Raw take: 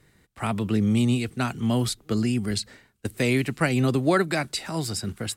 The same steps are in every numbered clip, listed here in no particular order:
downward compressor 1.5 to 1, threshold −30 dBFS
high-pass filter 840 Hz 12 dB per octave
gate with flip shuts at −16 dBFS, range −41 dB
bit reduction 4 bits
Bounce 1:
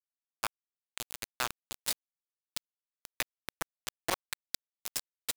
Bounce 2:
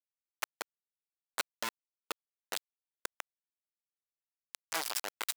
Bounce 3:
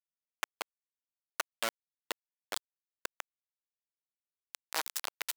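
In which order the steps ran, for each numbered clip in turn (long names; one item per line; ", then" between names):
high-pass filter, then gate with flip, then bit reduction, then downward compressor
gate with flip, then bit reduction, then downward compressor, then high-pass filter
gate with flip, then downward compressor, then bit reduction, then high-pass filter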